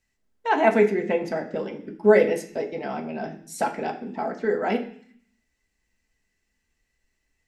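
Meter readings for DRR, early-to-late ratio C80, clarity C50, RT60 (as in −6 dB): 1.5 dB, 14.5 dB, 11.0 dB, 0.55 s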